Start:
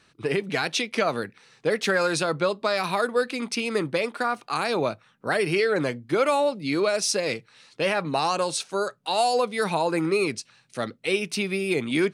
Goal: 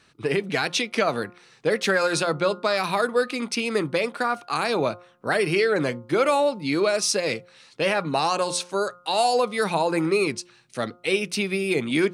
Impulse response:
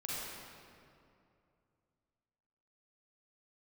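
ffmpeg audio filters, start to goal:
-af "bandreject=f=177.2:t=h:w=4,bandreject=f=354.4:t=h:w=4,bandreject=f=531.6:t=h:w=4,bandreject=f=708.8:t=h:w=4,bandreject=f=886:t=h:w=4,bandreject=f=1063.2:t=h:w=4,bandreject=f=1240.4:t=h:w=4,bandreject=f=1417.6:t=h:w=4,volume=1.19"

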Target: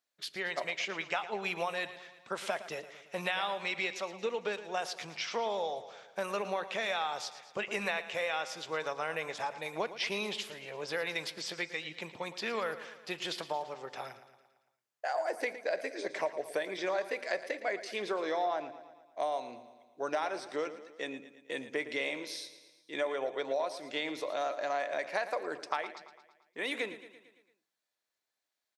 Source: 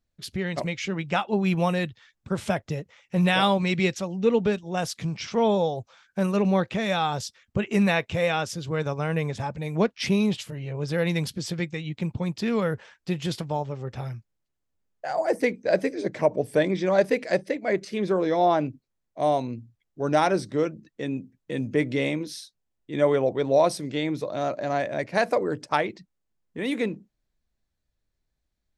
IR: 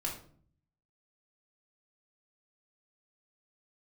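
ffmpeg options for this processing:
-filter_complex "[0:a]acrossover=split=4800[s0][s1];[s1]acompressor=threshold=0.00447:ratio=4:attack=1:release=60[s2];[s0][s2]amix=inputs=2:normalize=0,highpass=660,acompressor=threshold=0.0282:ratio=6,aecho=1:1:113|226|339|452|565|678:0.2|0.114|0.0648|0.037|0.0211|0.012,asplit=2[s3][s4];[1:a]atrim=start_sample=2205[s5];[s4][s5]afir=irnorm=-1:irlink=0,volume=0.119[s6];[s3][s6]amix=inputs=2:normalize=0"

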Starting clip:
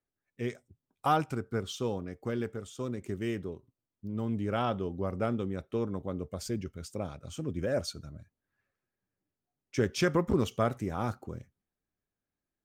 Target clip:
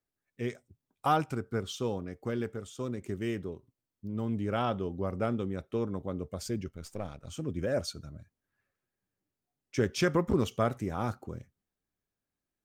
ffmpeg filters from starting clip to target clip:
-filter_complex "[0:a]asettb=1/sr,asplit=3[s0][s1][s2];[s0]atrim=end=6.684[s3];[s1]atrim=start=6.68:end=7.27,asetpts=PTS-STARTPTS,afade=t=in:d=0.004:c=qsin,afade=t=out:st=0.586:d=0.004:c=qsin,aeval=exprs='if(lt(val(0),0),0.447*val(0),val(0))':c=same[s4];[s2]atrim=start=7.266[s5];[s3][s4]acrossfade=d=0.004:c1=hsin:c2=qsin[s6];[s6][s5]acrossfade=d=0.004:c1=qsin:c2=hsin"

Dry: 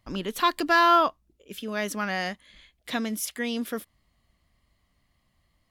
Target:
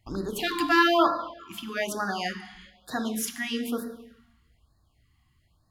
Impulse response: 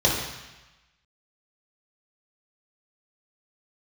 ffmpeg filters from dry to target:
-filter_complex "[0:a]asplit=2[s0][s1];[1:a]atrim=start_sample=2205[s2];[s1][s2]afir=irnorm=-1:irlink=0,volume=0.0944[s3];[s0][s3]amix=inputs=2:normalize=0,afftfilt=real='re*(1-between(b*sr/1024,470*pow(2700/470,0.5+0.5*sin(2*PI*1.1*pts/sr))/1.41,470*pow(2700/470,0.5+0.5*sin(2*PI*1.1*pts/sr))*1.41))':imag='im*(1-between(b*sr/1024,470*pow(2700/470,0.5+0.5*sin(2*PI*1.1*pts/sr))/1.41,470*pow(2700/470,0.5+0.5*sin(2*PI*1.1*pts/sr))*1.41))':win_size=1024:overlap=0.75"

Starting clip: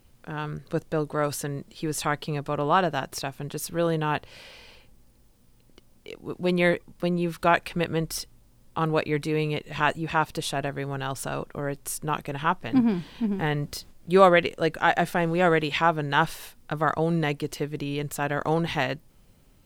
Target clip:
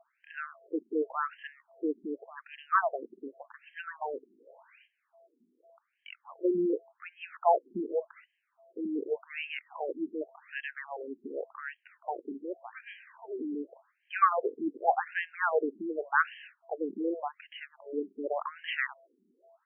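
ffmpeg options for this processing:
-af "aeval=exprs='val(0)+0.00141*sin(2*PI*670*n/s)':c=same,afftfilt=real='re*between(b*sr/1024,290*pow(2300/290,0.5+0.5*sin(2*PI*0.87*pts/sr))/1.41,290*pow(2300/290,0.5+0.5*sin(2*PI*0.87*pts/sr))*1.41)':imag='im*between(b*sr/1024,290*pow(2300/290,0.5+0.5*sin(2*PI*0.87*pts/sr))/1.41,290*pow(2300/290,0.5+0.5*sin(2*PI*0.87*pts/sr))*1.41)':win_size=1024:overlap=0.75"

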